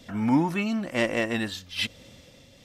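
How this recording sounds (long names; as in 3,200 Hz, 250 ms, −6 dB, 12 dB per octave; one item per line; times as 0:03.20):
tremolo triangle 1.1 Hz, depth 45%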